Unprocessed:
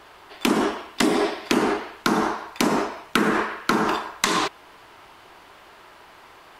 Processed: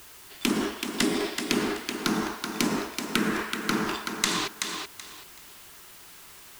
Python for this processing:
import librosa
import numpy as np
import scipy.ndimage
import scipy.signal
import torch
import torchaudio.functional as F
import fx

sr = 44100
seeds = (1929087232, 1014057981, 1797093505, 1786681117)

p1 = x + fx.echo_thinned(x, sr, ms=379, feedback_pct=25, hz=300.0, wet_db=-5.5, dry=0)
p2 = fx.quant_dither(p1, sr, seeds[0], bits=8, dither='triangular')
p3 = fx.peak_eq(p2, sr, hz=740.0, db=-11.0, octaves=2.2)
y = F.gain(torch.from_numpy(p3), -1.0).numpy()